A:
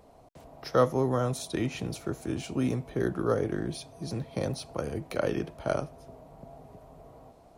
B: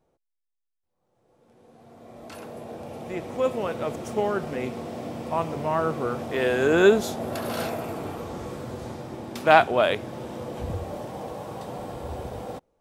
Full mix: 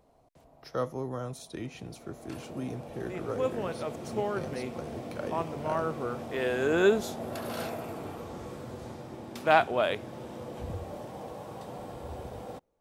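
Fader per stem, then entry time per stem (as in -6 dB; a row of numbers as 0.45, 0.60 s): -8.5, -6.0 dB; 0.00, 0.00 s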